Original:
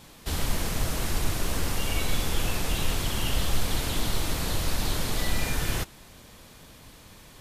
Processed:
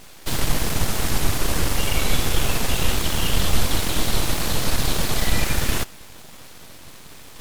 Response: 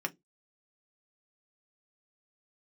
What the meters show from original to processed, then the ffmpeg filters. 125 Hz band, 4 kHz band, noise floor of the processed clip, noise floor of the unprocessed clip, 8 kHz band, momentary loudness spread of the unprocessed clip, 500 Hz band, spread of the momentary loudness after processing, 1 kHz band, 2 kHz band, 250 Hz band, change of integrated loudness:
+5.0 dB, +6.5 dB, -42 dBFS, -50 dBFS, +7.0 dB, 20 LU, +6.0 dB, 21 LU, +6.0 dB, +6.0 dB, +6.0 dB, +6.0 dB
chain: -af "areverse,acompressor=mode=upward:threshold=-43dB:ratio=2.5,areverse,aeval=exprs='abs(val(0))':c=same,volume=7.5dB"

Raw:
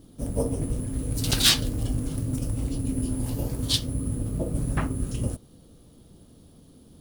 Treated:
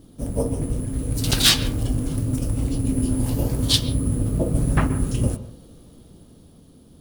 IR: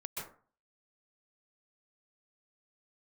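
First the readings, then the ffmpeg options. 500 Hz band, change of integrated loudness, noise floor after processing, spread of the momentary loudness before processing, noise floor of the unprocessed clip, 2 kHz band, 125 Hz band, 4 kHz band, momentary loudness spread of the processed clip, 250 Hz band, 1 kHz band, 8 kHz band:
+4.5 dB, +4.5 dB, -50 dBFS, 10 LU, -53 dBFS, +4.5 dB, +5.5 dB, +3.5 dB, 10 LU, +5.5 dB, +5.5 dB, +3.0 dB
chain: -filter_complex "[0:a]dynaudnorm=f=270:g=9:m=4dB,asplit=2[a][b];[1:a]atrim=start_sample=2205,lowpass=4.2k[c];[b][c]afir=irnorm=-1:irlink=0,volume=-11.5dB[d];[a][d]amix=inputs=2:normalize=0,volume=1.5dB"

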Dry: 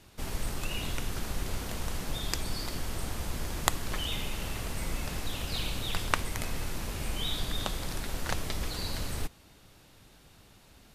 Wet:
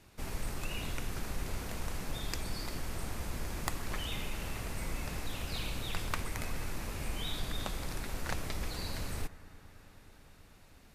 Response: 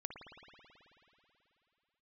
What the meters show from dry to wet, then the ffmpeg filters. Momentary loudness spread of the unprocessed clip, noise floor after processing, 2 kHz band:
6 LU, -58 dBFS, -4.0 dB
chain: -filter_complex "[0:a]asplit=2[a][b];[b]lowpass=f=2.7k:t=q:w=3.3[c];[1:a]atrim=start_sample=2205,asetrate=22050,aresample=44100[d];[c][d]afir=irnorm=-1:irlink=0,volume=-15dB[e];[a][e]amix=inputs=2:normalize=0,asoftclip=type=tanh:threshold=-15dB,volume=-4.5dB"

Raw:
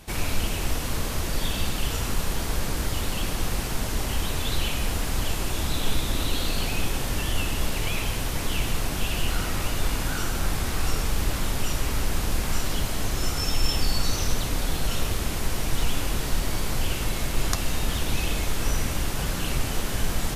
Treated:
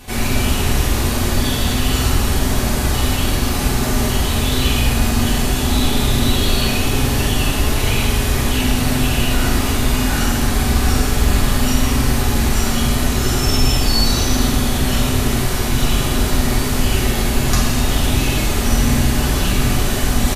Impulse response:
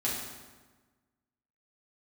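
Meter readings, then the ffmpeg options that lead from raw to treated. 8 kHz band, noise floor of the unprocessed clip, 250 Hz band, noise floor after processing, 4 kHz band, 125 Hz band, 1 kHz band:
+9.0 dB, -29 dBFS, +14.0 dB, -19 dBFS, +9.5 dB, +11.5 dB, +10.0 dB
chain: -filter_complex "[0:a]areverse,acompressor=mode=upward:threshold=-22dB:ratio=2.5,areverse,asplit=2[a][b];[b]adelay=48,volume=-11dB[c];[a][c]amix=inputs=2:normalize=0[d];[1:a]atrim=start_sample=2205[e];[d][e]afir=irnorm=-1:irlink=0,volume=2.5dB"

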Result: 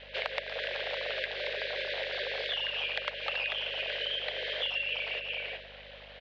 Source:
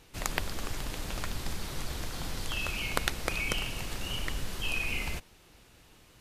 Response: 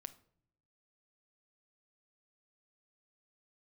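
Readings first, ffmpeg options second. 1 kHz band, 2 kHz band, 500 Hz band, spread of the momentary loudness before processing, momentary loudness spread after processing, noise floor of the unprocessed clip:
-3.0 dB, +3.0 dB, +6.0 dB, 7 LU, 4 LU, -59 dBFS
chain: -filter_complex "[0:a]asuperstop=centerf=730:order=20:qfactor=0.8,asplit=2[a][b];[b]adelay=379,volume=-10dB,highshelf=f=4k:g=-8.53[c];[a][c]amix=inputs=2:normalize=0,asplit=2[d][e];[1:a]atrim=start_sample=2205,lowshelf=f=220:g=8.5[f];[e][f]afir=irnorm=-1:irlink=0,volume=10.5dB[g];[d][g]amix=inputs=2:normalize=0,aeval=exprs='abs(val(0))':c=same,highpass=f=300:t=q:w=0.5412,highpass=f=300:t=q:w=1.307,lowpass=f=3.5k:t=q:w=0.5176,lowpass=f=3.5k:t=q:w=0.7071,lowpass=f=3.5k:t=q:w=1.932,afreqshift=230,acompressor=threshold=-38dB:ratio=6,aeval=exprs='val(0)+0.000708*(sin(2*PI*50*n/s)+sin(2*PI*2*50*n/s)/2+sin(2*PI*3*50*n/s)/3+sin(2*PI*4*50*n/s)/4+sin(2*PI*5*50*n/s)/5)':c=same,volume=6.5dB"

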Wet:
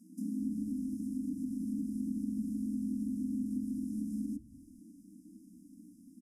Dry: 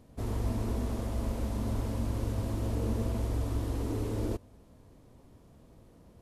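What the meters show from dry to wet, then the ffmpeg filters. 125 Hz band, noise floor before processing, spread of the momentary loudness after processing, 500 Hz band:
-15.5 dB, -58 dBFS, 20 LU, under -20 dB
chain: -filter_complex "[0:a]afftfilt=real='re*(1-between(b*sr/4096,150,5200))':imag='im*(1-between(b*sr/4096,150,5200))':win_size=4096:overlap=0.75,afreqshift=-320,acrossover=split=200[a][b];[b]acompressor=threshold=-47dB:ratio=6[c];[a][c]amix=inputs=2:normalize=0,equalizer=f=160:t=o:w=0.67:g=4,equalizer=f=400:t=o:w=0.67:g=11,equalizer=f=1k:t=o:w=0.67:g=-10,equalizer=f=4k:t=o:w=0.67:g=-3,equalizer=f=10k:t=o:w=0.67:g=8,asplit=4[d][e][f][g];[e]adelay=206,afreqshift=-150,volume=-24dB[h];[f]adelay=412,afreqshift=-300,volume=-30dB[i];[g]adelay=618,afreqshift=-450,volume=-36dB[j];[d][h][i][j]amix=inputs=4:normalize=0"

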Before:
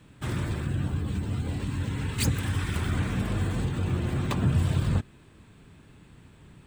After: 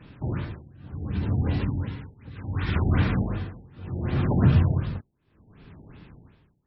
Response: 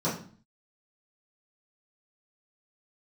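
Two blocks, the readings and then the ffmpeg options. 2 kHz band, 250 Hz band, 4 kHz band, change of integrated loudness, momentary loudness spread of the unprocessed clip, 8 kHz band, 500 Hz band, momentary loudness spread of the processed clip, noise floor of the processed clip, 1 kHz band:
-1.0 dB, +2.5 dB, -5.5 dB, +2.5 dB, 6 LU, under -35 dB, +2.0 dB, 19 LU, -69 dBFS, +1.0 dB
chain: -af "tremolo=f=0.68:d=0.96,afftfilt=real='re*lt(b*sr/1024,860*pow(5700/860,0.5+0.5*sin(2*PI*2.7*pts/sr)))':imag='im*lt(b*sr/1024,860*pow(5700/860,0.5+0.5*sin(2*PI*2.7*pts/sr)))':win_size=1024:overlap=0.75,volume=6dB"

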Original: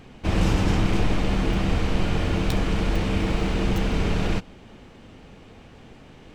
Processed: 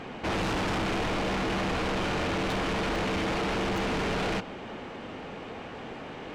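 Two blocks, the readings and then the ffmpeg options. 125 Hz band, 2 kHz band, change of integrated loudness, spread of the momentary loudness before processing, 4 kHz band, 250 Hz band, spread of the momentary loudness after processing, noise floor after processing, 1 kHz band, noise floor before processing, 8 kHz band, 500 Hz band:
-10.5 dB, +1.0 dB, -5.5 dB, 3 LU, -1.0 dB, -5.5 dB, 12 LU, -41 dBFS, +1.5 dB, -48 dBFS, -2.0 dB, -1.0 dB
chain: -filter_complex "[0:a]asplit=2[a][b];[b]highpass=f=720:p=1,volume=24dB,asoftclip=type=tanh:threshold=-7.5dB[c];[a][c]amix=inputs=2:normalize=0,lowpass=f=1.3k:p=1,volume=-6dB,asoftclip=type=tanh:threshold=-24.5dB,volume=-2.5dB"

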